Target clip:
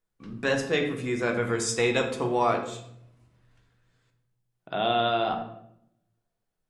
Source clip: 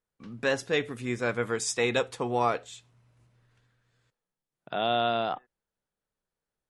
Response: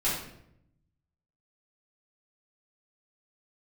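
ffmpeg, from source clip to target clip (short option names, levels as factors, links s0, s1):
-filter_complex "[0:a]asplit=2[s0][s1];[s1]lowshelf=f=390:g=5[s2];[1:a]atrim=start_sample=2205[s3];[s2][s3]afir=irnorm=-1:irlink=0,volume=0.282[s4];[s0][s4]amix=inputs=2:normalize=0,volume=0.841"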